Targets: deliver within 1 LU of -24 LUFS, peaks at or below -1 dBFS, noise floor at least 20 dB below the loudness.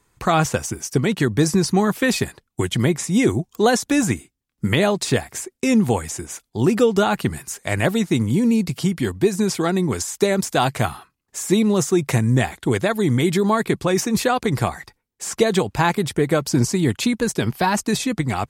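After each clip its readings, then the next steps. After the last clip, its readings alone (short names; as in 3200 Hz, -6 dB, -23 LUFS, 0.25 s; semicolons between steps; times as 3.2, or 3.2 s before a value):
loudness -20.5 LUFS; peak -4.5 dBFS; loudness target -24.0 LUFS
-> gain -3.5 dB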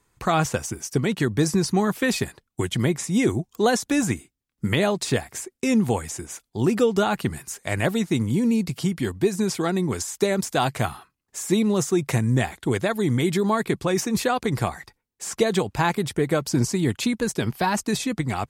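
loudness -24.0 LUFS; peak -8.0 dBFS; noise floor -77 dBFS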